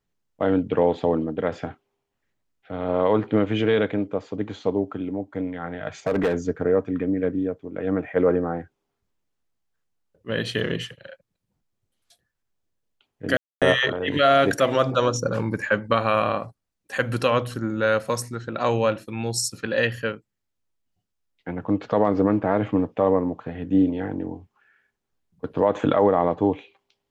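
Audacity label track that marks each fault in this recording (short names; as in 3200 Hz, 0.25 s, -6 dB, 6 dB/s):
6.070000	6.340000	clipped -17 dBFS
13.370000	13.620000	gap 0.247 s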